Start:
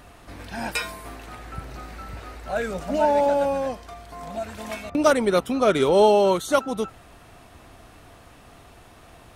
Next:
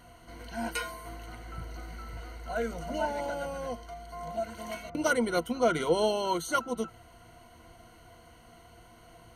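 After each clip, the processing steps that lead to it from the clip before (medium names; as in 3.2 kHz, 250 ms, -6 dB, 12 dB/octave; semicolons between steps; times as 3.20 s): rippled EQ curve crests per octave 1.9, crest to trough 15 dB; trim -8.5 dB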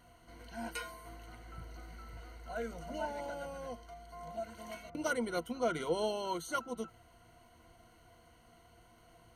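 crackle 74 per s -56 dBFS; trim -7.5 dB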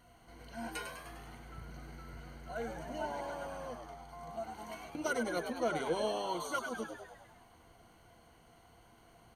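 frequency-shifting echo 101 ms, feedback 60%, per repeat +88 Hz, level -7 dB; trim -1 dB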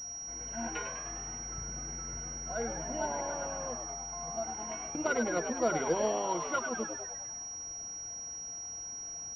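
class-D stage that switches slowly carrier 5.7 kHz; trim +4 dB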